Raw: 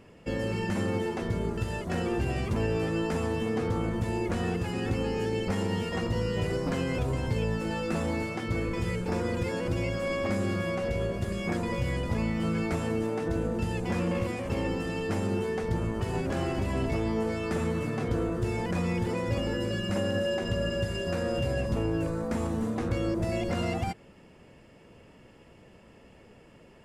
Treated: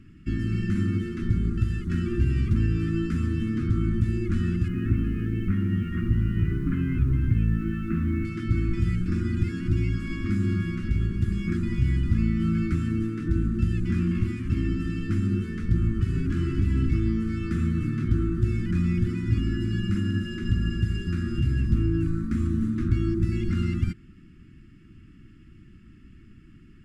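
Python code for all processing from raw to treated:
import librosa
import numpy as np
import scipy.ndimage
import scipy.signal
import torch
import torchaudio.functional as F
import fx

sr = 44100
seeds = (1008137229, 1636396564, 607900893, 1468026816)

y = fx.chain(x, sr, fx.cheby2_lowpass(hz=7900.0, order=4, stop_db=60),
    fx.quant_dither(seeds[0], bits=10, dither='triangular'), at=(4.68, 8.25))
y = scipy.signal.sosfilt(scipy.signal.ellip(3, 1.0, 40, [330.0, 1300.0], 'bandstop', fs=sr, output='sos'), y)
y = fx.tilt_eq(y, sr, slope=-2.5)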